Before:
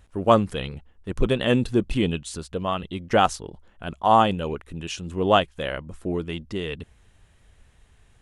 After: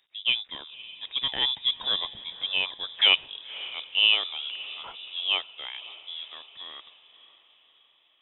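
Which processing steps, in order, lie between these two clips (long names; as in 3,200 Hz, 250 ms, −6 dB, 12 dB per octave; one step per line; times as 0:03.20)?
source passing by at 0:02.73, 21 m/s, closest 24 metres
high-pass filter 260 Hz 6 dB per octave
feedback delay with all-pass diffusion 552 ms, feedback 49%, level −16 dB
bad sample-rate conversion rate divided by 6×, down filtered, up hold
voice inversion scrambler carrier 3,700 Hz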